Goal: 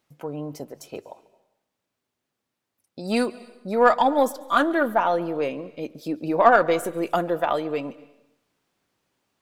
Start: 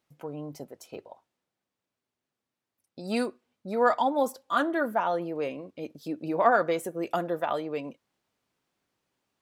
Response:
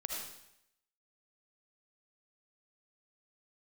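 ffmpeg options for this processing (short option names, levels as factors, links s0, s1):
-filter_complex "[0:a]aeval=exprs='0.447*(cos(1*acos(clip(val(0)/0.447,-1,1)))-cos(1*PI/2))+0.0141*(cos(4*acos(clip(val(0)/0.447,-1,1)))-cos(4*PI/2))+0.00794*(cos(7*acos(clip(val(0)/0.447,-1,1)))-cos(7*PI/2))':c=same,asplit=2[s0][s1];[1:a]atrim=start_sample=2205,adelay=142[s2];[s1][s2]afir=irnorm=-1:irlink=0,volume=0.1[s3];[s0][s3]amix=inputs=2:normalize=0,volume=2.11"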